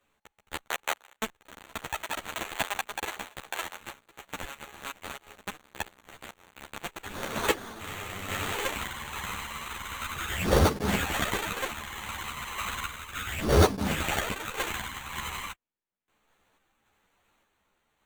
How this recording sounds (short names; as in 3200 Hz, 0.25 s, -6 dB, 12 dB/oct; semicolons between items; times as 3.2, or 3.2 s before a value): random-step tremolo; aliases and images of a low sample rate 5100 Hz, jitter 0%; a shimmering, thickened sound